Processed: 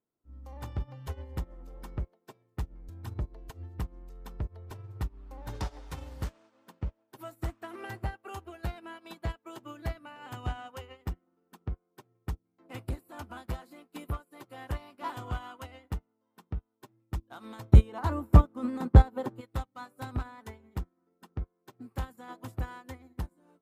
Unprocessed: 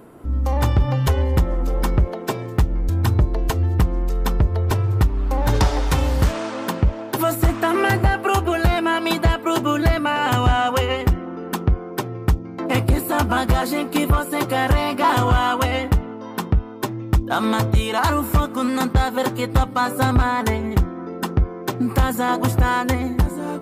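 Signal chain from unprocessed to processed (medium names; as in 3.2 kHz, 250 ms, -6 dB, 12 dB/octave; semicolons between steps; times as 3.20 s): 17.73–19.41 s: tilt shelf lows +7.5 dB, about 1.3 kHz; upward expansion 2.5:1, over -32 dBFS; trim -4 dB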